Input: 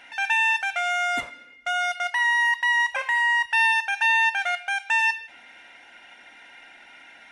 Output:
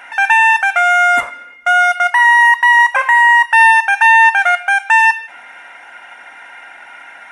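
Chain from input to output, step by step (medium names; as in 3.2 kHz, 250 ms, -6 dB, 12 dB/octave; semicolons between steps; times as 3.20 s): FFT filter 280 Hz 0 dB, 1.2 kHz +14 dB, 4.1 kHz -3 dB, 9.2 kHz +8 dB; trim +4 dB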